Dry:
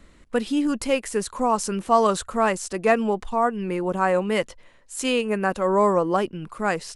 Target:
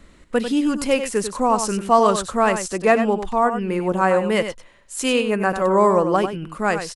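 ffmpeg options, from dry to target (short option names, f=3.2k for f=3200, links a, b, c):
-af "aecho=1:1:95:0.355,volume=3dB"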